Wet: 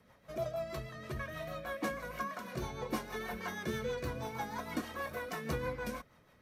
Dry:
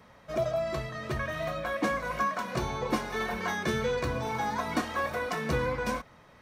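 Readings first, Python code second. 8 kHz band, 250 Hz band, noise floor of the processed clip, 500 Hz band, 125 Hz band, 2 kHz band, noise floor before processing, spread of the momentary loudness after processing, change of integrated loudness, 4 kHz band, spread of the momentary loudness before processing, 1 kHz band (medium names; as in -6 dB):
-6.5 dB, -7.0 dB, -65 dBFS, -8.0 dB, -7.0 dB, -8.5 dB, -56 dBFS, 5 LU, -8.5 dB, -8.0 dB, 4 LU, -10.0 dB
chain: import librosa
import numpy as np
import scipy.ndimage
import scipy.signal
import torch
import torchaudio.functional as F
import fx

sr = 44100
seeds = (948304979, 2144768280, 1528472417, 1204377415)

y = fx.peak_eq(x, sr, hz=13000.0, db=12.0, octaves=0.57)
y = fx.rotary(y, sr, hz=6.3)
y = y * 10.0 ** (-6.0 / 20.0)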